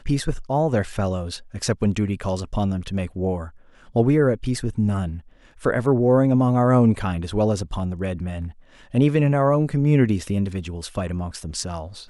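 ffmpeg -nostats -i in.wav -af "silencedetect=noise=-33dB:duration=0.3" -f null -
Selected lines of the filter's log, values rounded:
silence_start: 3.49
silence_end: 3.95 | silence_duration: 0.46
silence_start: 5.19
silence_end: 5.63 | silence_duration: 0.43
silence_start: 8.51
silence_end: 8.94 | silence_duration: 0.43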